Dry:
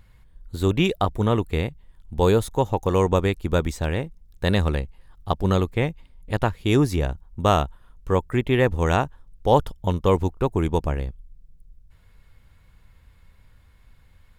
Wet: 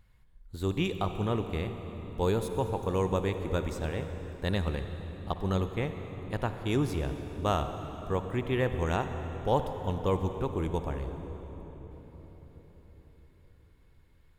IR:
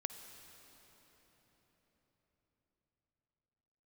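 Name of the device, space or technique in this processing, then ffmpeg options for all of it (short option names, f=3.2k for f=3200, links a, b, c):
cathedral: -filter_complex "[1:a]atrim=start_sample=2205[a];[0:a][a]afir=irnorm=-1:irlink=0,volume=-7.5dB"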